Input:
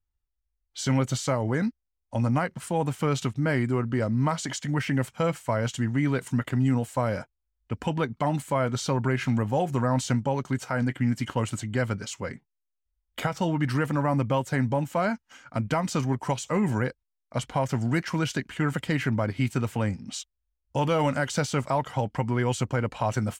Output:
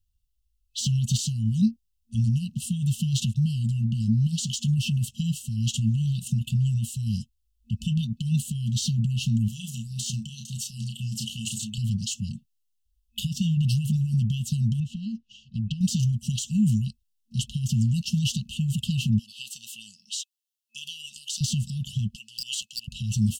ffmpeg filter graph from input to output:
ffmpeg -i in.wav -filter_complex "[0:a]asettb=1/sr,asplit=3[link_01][link_02][link_03];[link_01]atrim=end=9.484[link_04];[link_02]atrim=start=9.48:end=11.78,asetpts=PTS-STARTPTS,afade=type=in:duration=0.004:curve=qsin,afade=type=out:start_time=2.296:duration=0.004:curve=qsin,bass=frequency=250:gain=-14,treble=frequency=4000:gain=3,asplit=2[link_05][link_06];[link_06]adelay=32,volume=-5.5dB[link_07];[link_05][link_07]amix=inputs=2:normalize=0,atrim=end_sample=101430[link_08];[link_03]atrim=start=11.776[link_09];[link_04][link_08]acrossfade=duration=0.004:curve1=hsin:curve2=qsin[link_10];[link_10][link_09]acrossfade=duration=0.004:curve1=qsin:curve2=hsin,asettb=1/sr,asplit=3[link_11][link_12][link_13];[link_11]atrim=end=14.804[link_14];[link_12]atrim=start=14.8:end=15.81,asetpts=PTS-STARTPTS,afade=type=in:duration=0.004:curve=qsin,afade=type=out:start_time=1.006:duration=0.004:curve=qsin,lowpass=3600,acompressor=threshold=-30dB:ratio=5:attack=3.2:release=140:knee=1:detection=peak[link_15];[link_13]atrim=start=15.806[link_16];[link_14][link_15]acrossfade=duration=0.004:curve1=hsin:curve2=qsin[link_17];[link_17][link_16]acrossfade=duration=0.004:curve1=qsin:curve2=hsin,asettb=1/sr,asplit=3[link_18][link_19][link_20];[link_18]atrim=end=19.194[link_21];[link_19]atrim=start=19.19:end=21.41,asetpts=PTS-STARTPTS,afade=type=in:duration=0.004:curve=qsin,afade=type=out:start_time=2.216:duration=0.004:curve=qsin,highpass=1300,acompressor=threshold=-35dB:ratio=3:attack=3.2:release=140:knee=1:detection=peak[link_22];[link_20]atrim=start=21.406[link_23];[link_21][link_22]acrossfade=duration=0.004:curve1=hsin:curve2=qsin[link_24];[link_24][link_23]acrossfade=duration=0.004:curve1=qsin:curve2=hsin,asettb=1/sr,asplit=3[link_25][link_26][link_27];[link_25]atrim=end=22.164[link_28];[link_26]atrim=start=22.16:end=22.88,asetpts=PTS-STARTPTS,afade=type=in:duration=0.004:curve=qsin,afade=type=out:start_time=0.716:duration=0.004:curve=qsin,highpass=frequency=1600:width_type=q:width=13,aeval=exprs='0.188*(abs(mod(val(0)/0.188+3,4)-2)-1)':channel_layout=same[link_29];[link_27]atrim=start=22.876[link_30];[link_28][link_29]acrossfade=duration=0.004:curve1=hsin:curve2=qsin[link_31];[link_31][link_30]acrossfade=duration=0.004:curve1=qsin:curve2=hsin,alimiter=limit=-21dB:level=0:latency=1:release=25,afftfilt=real='re*(1-between(b*sr/4096,230,2600))':imag='im*(1-between(b*sr/4096,230,2600))':win_size=4096:overlap=0.75,deesser=0.75,volume=8dB" out.wav

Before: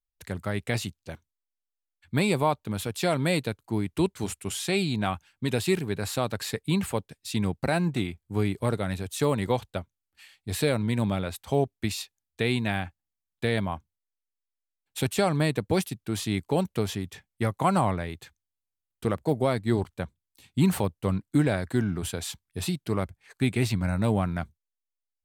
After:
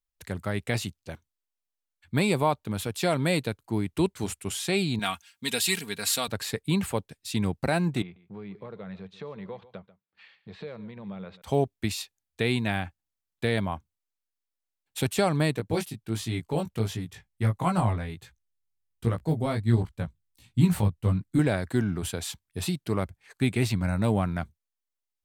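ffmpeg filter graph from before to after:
ffmpeg -i in.wav -filter_complex "[0:a]asettb=1/sr,asplit=3[link_01][link_02][link_03];[link_01]atrim=end=4.994[link_04];[link_02]atrim=start=4.99:end=6.28,asetpts=PTS-STARTPTS,afade=type=in:duration=0.004:curve=qsin,afade=type=out:start_time=1.286:duration=0.004:curve=qsin,highpass=61,tiltshelf=frequency=1500:gain=-9,aecho=1:1:4.3:0.58,atrim=end_sample=56889[link_05];[link_03]atrim=start=6.276[link_06];[link_04][link_05]acrossfade=duration=0.004:curve1=hsin:curve2=qsin[link_07];[link_07][link_06]acrossfade=duration=0.004:curve1=qsin:curve2=hsin,asettb=1/sr,asplit=3[link_08][link_09][link_10];[link_08]atrim=end=8.024[link_11];[link_09]atrim=start=8.02:end=11.42,asetpts=PTS-STARTPTS,afade=type=in:duration=0.004:curve=qsin,afade=type=out:start_time=3.396:duration=0.004:curve=qsin,acompressor=threshold=-42dB:ratio=3:attack=3.2:release=140:knee=1:detection=peak,highpass=140,equalizer=frequency=190:width_type=q:width=4:gain=9,equalizer=frequency=270:width_type=q:width=4:gain=-9,equalizer=frequency=470:width_type=q:width=4:gain=6,equalizer=frequency=1100:width_type=q:width=4:gain=3,equalizer=frequency=3000:width_type=q:width=4:gain=-4,lowpass=frequency=3800:width=0.5412,lowpass=frequency=3800:width=1.3066,aecho=1:1:140:0.141,atrim=end_sample=149940[link_12];[link_10]atrim=start=11.416[link_13];[link_11][link_12]acrossfade=duration=0.004:curve1=hsin:curve2=qsin[link_14];[link_14][link_13]acrossfade=duration=0.004:curve1=qsin:curve2=hsin,asettb=1/sr,asplit=3[link_15][link_16][link_17];[link_15]atrim=end=15.564[link_18];[link_16]atrim=start=15.56:end=21.39,asetpts=PTS-STARTPTS,afade=type=in:duration=0.004:curve=qsin,afade=type=out:start_time=5.826:duration=0.004:curve=qsin,asubboost=boost=3:cutoff=200,flanger=delay=17:depth=2.4:speed=1.4[link_19];[link_17]atrim=start=21.386[link_20];[link_18][link_19]acrossfade=duration=0.004:curve1=hsin:curve2=qsin[link_21];[link_21][link_20]acrossfade=duration=0.004:curve1=qsin:curve2=hsin" out.wav

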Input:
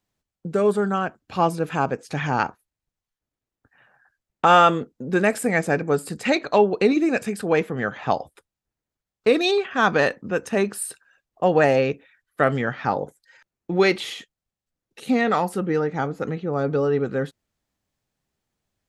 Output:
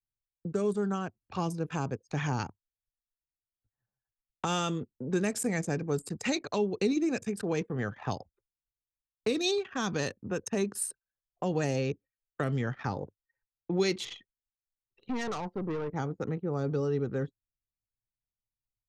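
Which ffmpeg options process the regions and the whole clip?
ffmpeg -i in.wav -filter_complex "[0:a]asettb=1/sr,asplit=3[link_01][link_02][link_03];[link_01]atrim=end=14.054[link_04];[link_02]atrim=start=14.05:end=15.94,asetpts=PTS-STARTPTS,afade=type=in:duration=0.004:curve=qsin,afade=type=out:start_time=1.886:duration=0.004:curve=qsin,lowpass=frequency=4600:width=0.5412,lowpass=frequency=4600:width=1.3066,aeval=exprs='(tanh(15.8*val(0)+0.35)-tanh(0.35))/15.8':channel_layout=same[link_05];[link_03]atrim=start=15.936[link_06];[link_04][link_05]acrossfade=duration=0.004:curve1=hsin:curve2=qsin[link_07];[link_07][link_06]acrossfade=duration=0.004:curve1=qsin:curve2=hsin,anlmdn=3.98,equalizer=frequency=100:width_type=o:width=0.67:gain=9,equalizer=frequency=400:width_type=o:width=0.67:gain=4,equalizer=frequency=1000:width_type=o:width=0.67:gain=5,equalizer=frequency=6300:width_type=o:width=0.67:gain=10,acrossover=split=300|3000[link_08][link_09][link_10];[link_09]acompressor=threshold=-28dB:ratio=6[link_11];[link_08][link_11][link_10]amix=inputs=3:normalize=0,volume=-6.5dB" out.wav

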